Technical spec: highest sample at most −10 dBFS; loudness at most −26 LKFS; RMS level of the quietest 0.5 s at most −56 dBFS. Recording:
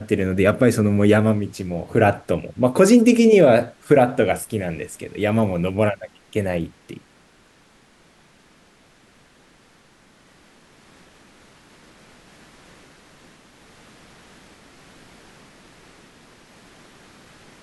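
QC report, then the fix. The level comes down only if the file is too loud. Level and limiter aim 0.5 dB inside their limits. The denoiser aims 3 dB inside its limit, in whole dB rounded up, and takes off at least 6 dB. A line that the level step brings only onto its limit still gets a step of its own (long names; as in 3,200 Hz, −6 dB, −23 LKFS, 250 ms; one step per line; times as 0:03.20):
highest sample −3.0 dBFS: out of spec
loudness −18.5 LKFS: out of spec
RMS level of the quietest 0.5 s −55 dBFS: out of spec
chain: level −8 dB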